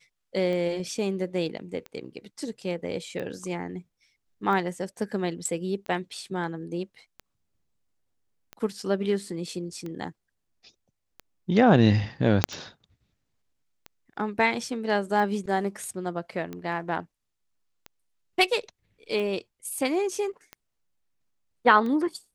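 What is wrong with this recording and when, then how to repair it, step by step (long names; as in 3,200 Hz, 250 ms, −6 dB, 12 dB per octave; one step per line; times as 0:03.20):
scratch tick 45 rpm −23 dBFS
0:12.44: click −3 dBFS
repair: click removal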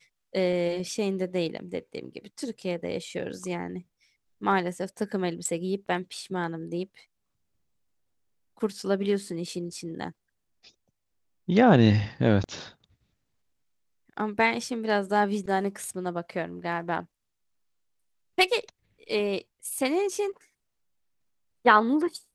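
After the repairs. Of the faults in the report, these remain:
0:12.44: click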